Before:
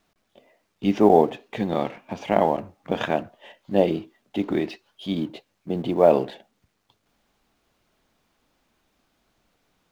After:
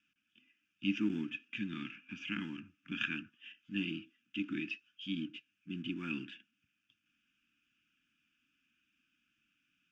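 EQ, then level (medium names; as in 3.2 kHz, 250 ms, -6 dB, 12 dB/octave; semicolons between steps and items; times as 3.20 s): vowel filter e; elliptic band-stop 290–1200 Hz, stop band 40 dB; static phaser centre 2.8 kHz, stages 8; +13.0 dB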